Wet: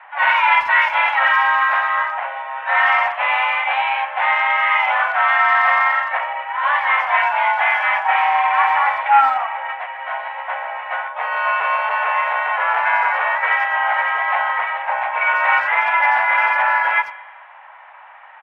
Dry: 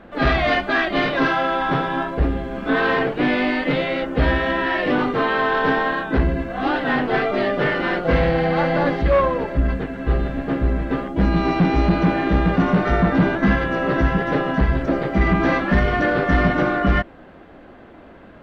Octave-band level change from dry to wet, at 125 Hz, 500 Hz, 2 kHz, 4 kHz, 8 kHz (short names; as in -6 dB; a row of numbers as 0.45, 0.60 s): under -40 dB, -9.5 dB, +7.0 dB, +1.0 dB, n/a